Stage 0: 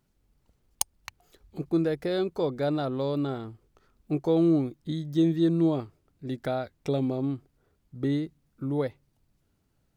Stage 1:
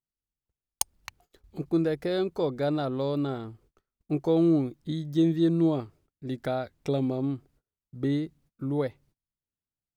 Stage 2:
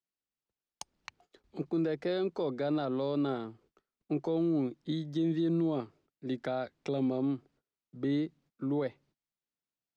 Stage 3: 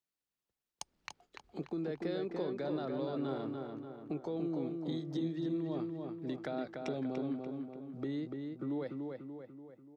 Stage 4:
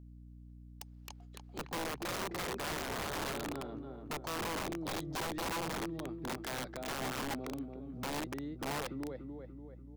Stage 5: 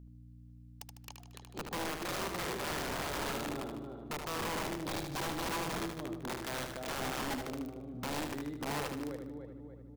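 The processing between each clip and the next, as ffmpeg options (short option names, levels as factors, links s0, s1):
-af "agate=range=0.0447:threshold=0.00112:ratio=16:detection=peak"
-filter_complex "[0:a]acrossover=split=160 6800:gain=0.158 1 0.0631[s0][s1][s2];[s0][s1][s2]amix=inputs=3:normalize=0,acrossover=split=140[s3][s4];[s4]alimiter=level_in=1.06:limit=0.0631:level=0:latency=1:release=25,volume=0.944[s5];[s3][s5]amix=inputs=2:normalize=0"
-filter_complex "[0:a]acompressor=threshold=0.0126:ratio=2.5,asplit=2[s0][s1];[s1]adelay=291,lowpass=f=3100:p=1,volume=0.631,asplit=2[s2][s3];[s3]adelay=291,lowpass=f=3100:p=1,volume=0.53,asplit=2[s4][s5];[s5]adelay=291,lowpass=f=3100:p=1,volume=0.53,asplit=2[s6][s7];[s7]adelay=291,lowpass=f=3100:p=1,volume=0.53,asplit=2[s8][s9];[s9]adelay=291,lowpass=f=3100:p=1,volume=0.53,asplit=2[s10][s11];[s11]adelay=291,lowpass=f=3100:p=1,volume=0.53,asplit=2[s12][s13];[s13]adelay=291,lowpass=f=3100:p=1,volume=0.53[s14];[s0][s2][s4][s6][s8][s10][s12][s14]amix=inputs=8:normalize=0"
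-af "aeval=exprs='val(0)+0.00282*(sin(2*PI*60*n/s)+sin(2*PI*2*60*n/s)/2+sin(2*PI*3*60*n/s)/3+sin(2*PI*4*60*n/s)/4+sin(2*PI*5*60*n/s)/5)':c=same,aeval=exprs='(mod(42.2*val(0)+1,2)-1)/42.2':c=same"
-af "aecho=1:1:76|152|228|304|380|456:0.501|0.241|0.115|0.0554|0.0266|0.0128"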